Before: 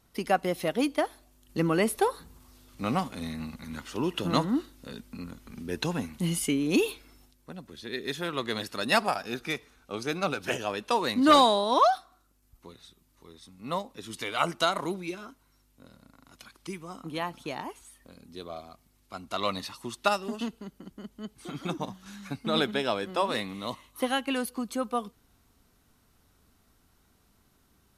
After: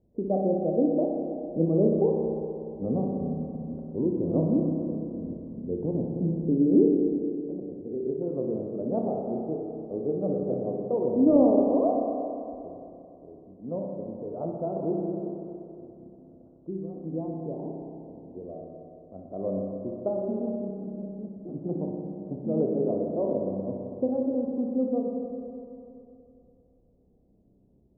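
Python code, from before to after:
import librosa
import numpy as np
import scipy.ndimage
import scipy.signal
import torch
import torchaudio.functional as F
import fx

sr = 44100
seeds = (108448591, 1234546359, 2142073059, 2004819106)

y = scipy.signal.sosfilt(scipy.signal.butter(6, 580.0, 'lowpass', fs=sr, output='sos'), x)
y = fx.tilt_eq(y, sr, slope=1.5)
y = fx.rev_spring(y, sr, rt60_s=2.8, pass_ms=(31, 57), chirp_ms=50, drr_db=-0.5)
y = y * librosa.db_to_amplitude(4.5)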